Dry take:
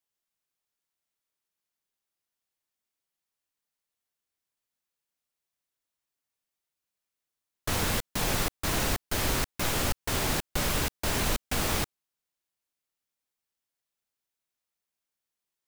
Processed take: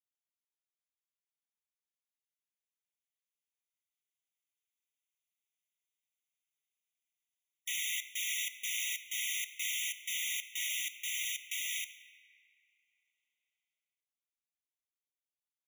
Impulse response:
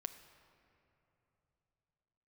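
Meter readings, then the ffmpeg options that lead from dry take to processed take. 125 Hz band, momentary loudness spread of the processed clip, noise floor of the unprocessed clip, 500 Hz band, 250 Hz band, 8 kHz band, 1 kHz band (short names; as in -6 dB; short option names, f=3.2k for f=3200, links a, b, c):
under -40 dB, 2 LU, under -85 dBFS, under -40 dB, under -40 dB, -3.0 dB, under -40 dB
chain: -filter_complex "[0:a]dynaudnorm=f=590:g=13:m=11.5dB[a];[1:a]atrim=start_sample=2205[b];[a][b]afir=irnorm=-1:irlink=0,afftfilt=real='re*eq(mod(floor(b*sr/1024/1900),2),1)':imag='im*eq(mod(floor(b*sr/1024/1900),2),1)':win_size=1024:overlap=0.75,volume=-8.5dB"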